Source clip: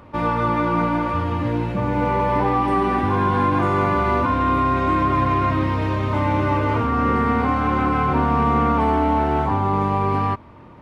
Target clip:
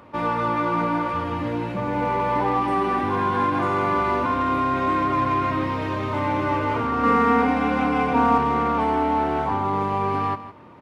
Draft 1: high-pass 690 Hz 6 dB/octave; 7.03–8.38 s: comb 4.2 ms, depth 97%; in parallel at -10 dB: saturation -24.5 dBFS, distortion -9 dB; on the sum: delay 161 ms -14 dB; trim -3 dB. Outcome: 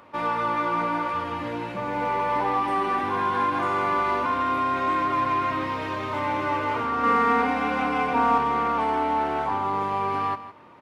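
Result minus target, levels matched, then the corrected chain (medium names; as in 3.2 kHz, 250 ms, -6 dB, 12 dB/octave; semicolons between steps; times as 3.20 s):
250 Hz band -4.0 dB
high-pass 210 Hz 6 dB/octave; 7.03–8.38 s: comb 4.2 ms, depth 97%; in parallel at -10 dB: saturation -24.5 dBFS, distortion -7 dB; on the sum: delay 161 ms -14 dB; trim -3 dB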